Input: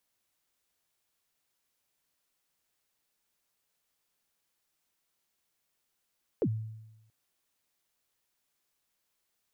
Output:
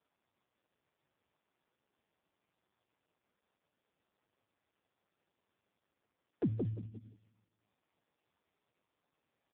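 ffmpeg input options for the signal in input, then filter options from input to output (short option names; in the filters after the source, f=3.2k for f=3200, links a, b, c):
-f lavfi -i "aevalsrc='0.0708*pow(10,-3*t/0.99)*sin(2*PI*(530*0.063/log(110/530)*(exp(log(110/530)*min(t,0.063)/0.063)-1)+110*max(t-0.063,0)))':d=0.68:s=44100"
-filter_complex "[0:a]adynamicsmooth=sensitivity=4:basefreq=1.3k,asplit=2[a][b];[b]adelay=174,lowpass=f=990:p=1,volume=-3.5dB,asplit=2[c][d];[d]adelay=174,lowpass=f=990:p=1,volume=0.29,asplit=2[e][f];[f]adelay=174,lowpass=f=990:p=1,volume=0.29,asplit=2[g][h];[h]adelay=174,lowpass=f=990:p=1,volume=0.29[i];[c][e][g][i]amix=inputs=4:normalize=0[j];[a][j]amix=inputs=2:normalize=0" -ar 8000 -c:a libopencore_amrnb -b:a 4750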